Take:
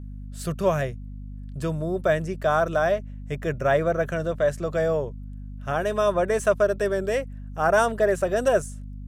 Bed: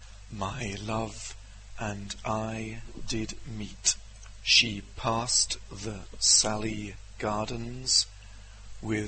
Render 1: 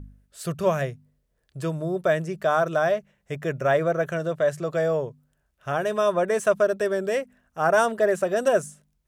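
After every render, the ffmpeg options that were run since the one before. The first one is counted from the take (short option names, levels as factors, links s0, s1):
-af "bandreject=f=50:t=h:w=4,bandreject=f=100:t=h:w=4,bandreject=f=150:t=h:w=4,bandreject=f=200:t=h:w=4,bandreject=f=250:t=h:w=4"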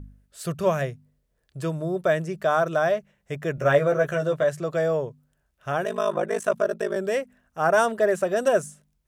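-filter_complex "[0:a]asettb=1/sr,asplit=3[s0][s1][s2];[s0]atrim=end=3.564[s3];[s1]atrim=start=3.56:end=4.44,asetpts=PTS-STARTPTS,afade=t=in:d=0.004:c=qsin,afade=t=out:st=0.876:d=0.004:c=qsin,asplit=2[s4][s5];[s5]adelay=14,volume=0.75[s6];[s4][s6]amix=inputs=2:normalize=0,atrim=end_sample=38808[s7];[s2]atrim=start=4.436[s8];[s3][s7]acrossfade=d=0.004:c1=hsin:c2=qsin[s9];[s9][s8]acrossfade=d=0.004:c1=qsin:c2=hsin,asettb=1/sr,asplit=3[s10][s11][s12];[s10]atrim=end=5.844[s13];[s11]atrim=start=5.84:end=6.96,asetpts=PTS-STARTPTS,afade=t=in:d=0.004:c=qsin,afade=t=out:st=1.116:d=0.004:c=qsin,aeval=exprs='val(0)*sin(2*PI*26*n/s)':c=same[s14];[s12]atrim=start=6.956[s15];[s13][s14]acrossfade=d=0.004:c1=hsin:c2=qsin[s16];[s16][s15]acrossfade=d=0.004:c1=qsin:c2=hsin"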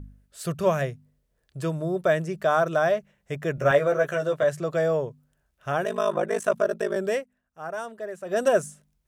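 -filter_complex "[0:a]asettb=1/sr,asplit=3[s0][s1][s2];[s0]atrim=end=3.714[s3];[s1]atrim=start=3.71:end=4.43,asetpts=PTS-STARTPTS,afade=t=in:d=0.004:c=qsin,afade=t=out:st=0.716:d=0.004:c=qsin,highpass=f=250:p=1[s4];[s2]atrim=start=4.426[s5];[s3][s4]acrossfade=d=0.004:c1=hsin:c2=qsin[s6];[s6][s5]acrossfade=d=0.004:c1=qsin:c2=hsin,asplit=3[s7][s8][s9];[s7]atrim=end=7.26,asetpts=PTS-STARTPTS,afade=t=out:st=7.13:d=0.13:silence=0.211349[s10];[s8]atrim=start=7.26:end=8.24,asetpts=PTS-STARTPTS,volume=0.211[s11];[s9]atrim=start=8.24,asetpts=PTS-STARTPTS,afade=t=in:d=0.13:silence=0.211349[s12];[s10][s11][s12]concat=n=3:v=0:a=1"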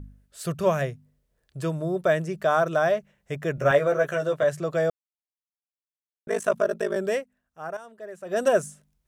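-filter_complex "[0:a]asplit=4[s0][s1][s2][s3];[s0]atrim=end=4.9,asetpts=PTS-STARTPTS,afade=t=out:st=4.896:d=0.004:c=hsin[s4];[s1]atrim=start=4.9:end=6.27,asetpts=PTS-STARTPTS,volume=0[s5];[s2]atrim=start=6.27:end=7.77,asetpts=PTS-STARTPTS,afade=t=in:d=0.004:c=hsin,afade=t=out:st=1.496:d=0.004:c=hsin:silence=0.251189[s6];[s3]atrim=start=7.77,asetpts=PTS-STARTPTS,afade=t=in:d=0.67:silence=0.251189[s7];[s4][s5][s6][s7]concat=n=4:v=0:a=1"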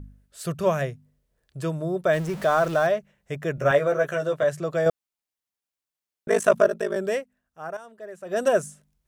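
-filter_complex "[0:a]asettb=1/sr,asplit=3[s0][s1][s2];[s0]atrim=end=2.134[s3];[s1]atrim=start=2.13:end=2.87,asetpts=PTS-STARTPTS,afade=t=in:d=0.004:c=qsin,afade=t=out:st=0.736:d=0.004:c=qsin,aeval=exprs='val(0)+0.5*0.0224*sgn(val(0))':c=same[s4];[s2]atrim=start=2.866[s5];[s3][s4]acrossfade=d=0.004:c1=hsin:c2=qsin[s6];[s6][s5]acrossfade=d=0.004:c1=qsin:c2=hsin,asettb=1/sr,asplit=3[s7][s8][s9];[s7]atrim=end=4.864[s10];[s8]atrim=start=4.86:end=6.69,asetpts=PTS-STARTPTS,afade=t=in:d=0.004:c=qsin,afade=t=out:st=1.826:d=0.004:c=qsin,acontrast=38[s11];[s9]atrim=start=6.686[s12];[s10][s11]acrossfade=d=0.004:c1=hsin:c2=qsin[s13];[s13][s12]acrossfade=d=0.004:c1=qsin:c2=hsin"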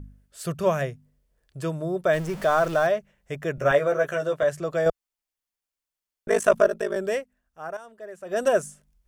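-af "bandreject=f=3900:w=21,asubboost=boost=5:cutoff=52"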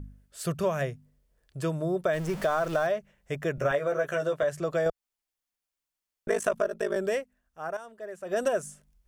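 -af "acompressor=threshold=0.0708:ratio=6"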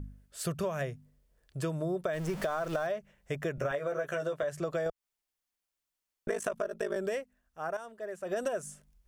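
-af "acompressor=threshold=0.0316:ratio=4"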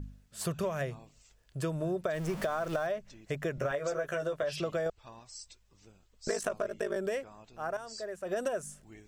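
-filter_complex "[1:a]volume=0.0708[s0];[0:a][s0]amix=inputs=2:normalize=0"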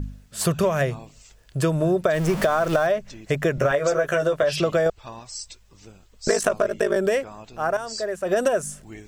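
-af "volume=3.98"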